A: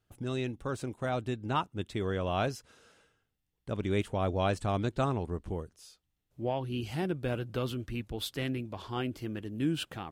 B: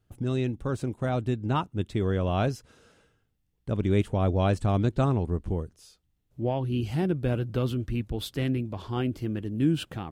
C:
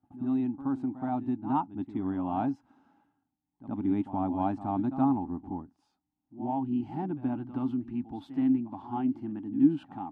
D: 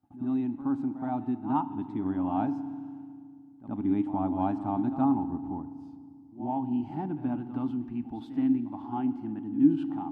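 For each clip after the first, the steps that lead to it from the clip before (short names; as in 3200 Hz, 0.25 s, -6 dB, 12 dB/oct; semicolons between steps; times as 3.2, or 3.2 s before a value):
low shelf 410 Hz +9 dB
double band-pass 480 Hz, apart 1.6 oct; pre-echo 73 ms -13 dB; gain +7 dB
reverb RT60 2.1 s, pre-delay 3 ms, DRR 12.5 dB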